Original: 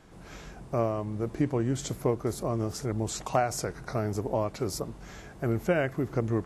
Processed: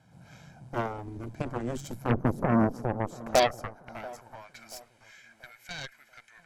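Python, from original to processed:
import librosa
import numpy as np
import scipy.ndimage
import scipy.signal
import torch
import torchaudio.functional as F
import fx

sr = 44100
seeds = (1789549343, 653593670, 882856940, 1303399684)

p1 = fx.graphic_eq_10(x, sr, hz=(125, 250, 500, 1000, 2000, 4000, 8000), db=(6, 12, 7, -6, -6, -8, -10), at=(2.09, 3.93), fade=0.02)
p2 = fx.filter_sweep_highpass(p1, sr, from_hz=120.0, to_hz=2000.0, start_s=2.04, end_s=4.67, q=2.5)
p3 = p2 + 0.74 * np.pad(p2, (int(1.3 * sr / 1000.0), 0))[:len(p2)]
p4 = fx.cheby_harmonics(p3, sr, harmonics=(5, 7, 8), levels_db=(-19, -9, -16), full_scale_db=-6.0)
p5 = p4 + fx.echo_wet_lowpass(p4, sr, ms=684, feedback_pct=35, hz=1400.0, wet_db=-19, dry=0)
y = p5 * librosa.db_to_amplitude(-9.0)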